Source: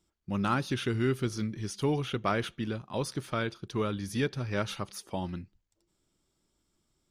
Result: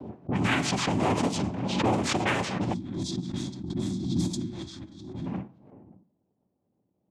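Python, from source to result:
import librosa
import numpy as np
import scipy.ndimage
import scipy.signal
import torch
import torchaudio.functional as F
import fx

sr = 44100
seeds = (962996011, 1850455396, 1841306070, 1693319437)

p1 = x + fx.echo_single(x, sr, ms=578, db=-21.5, dry=0)
p2 = fx.noise_vocoder(p1, sr, seeds[0], bands=4)
p3 = fx.peak_eq(p2, sr, hz=190.0, db=-9.5, octaves=1.4, at=(4.5, 5.22))
p4 = fx.rev_double_slope(p3, sr, seeds[1], early_s=0.51, late_s=1.9, knee_db=-27, drr_db=9.5)
p5 = fx.env_lowpass(p4, sr, base_hz=500.0, full_db=-25.0)
p6 = 10.0 ** (-29.0 / 20.0) * np.tanh(p5 / 10.0 ** (-29.0 / 20.0))
p7 = p5 + F.gain(torch.from_numpy(p6), -4.0).numpy()
p8 = fx.spec_box(p7, sr, start_s=2.73, length_s=2.54, low_hz=380.0, high_hz=3200.0, gain_db=-21)
y = fx.pre_swell(p8, sr, db_per_s=48.0)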